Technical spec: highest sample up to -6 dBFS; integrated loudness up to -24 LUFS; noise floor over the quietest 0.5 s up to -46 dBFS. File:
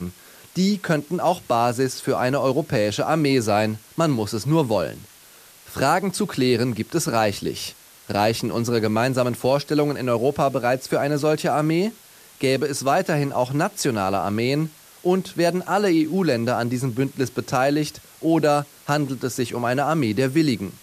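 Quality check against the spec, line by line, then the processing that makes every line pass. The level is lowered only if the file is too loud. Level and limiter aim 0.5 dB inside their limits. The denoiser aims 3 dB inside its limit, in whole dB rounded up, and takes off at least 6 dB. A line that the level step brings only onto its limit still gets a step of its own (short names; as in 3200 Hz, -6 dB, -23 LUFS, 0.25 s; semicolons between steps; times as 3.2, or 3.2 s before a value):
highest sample -7.0 dBFS: OK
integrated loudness -22.0 LUFS: fail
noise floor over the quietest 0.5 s -48 dBFS: OK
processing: gain -2.5 dB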